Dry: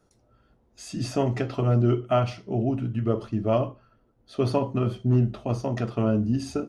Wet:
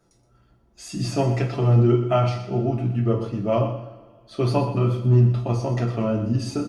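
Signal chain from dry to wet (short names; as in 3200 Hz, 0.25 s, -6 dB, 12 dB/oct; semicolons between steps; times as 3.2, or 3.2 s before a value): comb 5.9 ms, depth 41%; two-slope reverb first 0.32 s, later 2 s, from -20 dB, DRR 2 dB; wow and flutter 25 cents; on a send: feedback echo 0.123 s, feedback 29%, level -12 dB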